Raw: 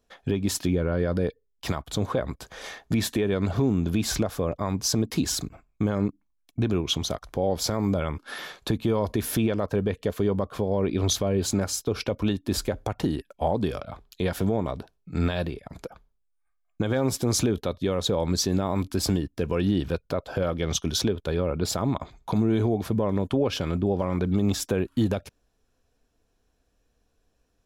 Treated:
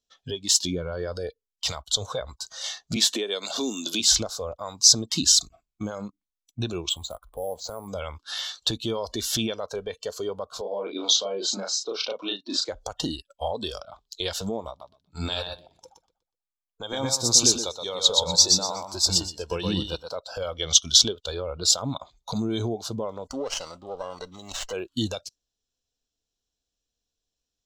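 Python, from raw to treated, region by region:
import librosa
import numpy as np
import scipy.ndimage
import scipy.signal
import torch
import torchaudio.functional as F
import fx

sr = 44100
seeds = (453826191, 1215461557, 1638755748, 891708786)

y = fx.chain(x, sr, fx.highpass(hz=210.0, slope=24),
    fx.high_shelf(hz=8100.0, db=5.0),
    fx.band_squash(depth_pct=70), at=(2.96, 4.0))
y = fx.chain(y, sr, fx.spacing_loss(db_at_10k=35),
    fx.resample_bad(factor=4, down='filtered', up='hold'), at=(6.89, 7.88))
y = fx.chain(y, sr, fx.highpass(hz=210.0, slope=24),
    fx.air_absorb(metres=160.0),
    fx.doubler(ms=35.0, db=-3.0), at=(10.61, 12.69))
y = fx.chain(y, sr, fx.peak_eq(hz=900.0, db=7.0, octaves=0.42),
    fx.echo_feedback(ms=122, feedback_pct=28, wet_db=-3.0),
    fx.upward_expand(threshold_db=-35.0, expansion=1.5), at=(14.69, 20.16))
y = fx.chain(y, sr, fx.low_shelf(hz=220.0, db=-9.5),
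    fx.running_max(window=9), at=(23.28, 24.73))
y = fx.noise_reduce_blind(y, sr, reduce_db=15)
y = fx.band_shelf(y, sr, hz=4800.0, db=15.5, octaves=1.7)
y = F.gain(torch.from_numpy(y), -3.5).numpy()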